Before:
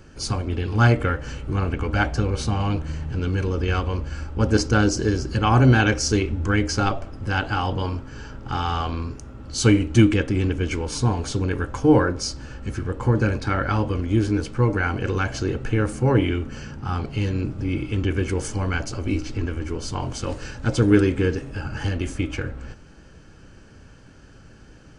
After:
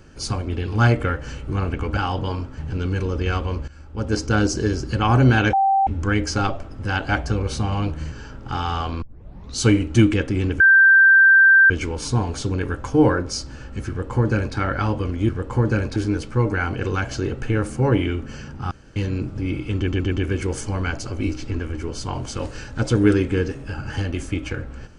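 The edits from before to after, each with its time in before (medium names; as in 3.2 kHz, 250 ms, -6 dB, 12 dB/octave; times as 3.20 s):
1.97–3.00 s: swap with 7.51–8.12 s
4.10–4.85 s: fade in, from -16.5 dB
5.95–6.29 s: bleep 780 Hz -14 dBFS
9.02 s: tape start 0.55 s
10.60 s: add tone 1.57 kHz -8.5 dBFS 1.10 s
12.79–13.46 s: copy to 14.19 s
16.94–17.19 s: room tone
17.99 s: stutter 0.12 s, 4 plays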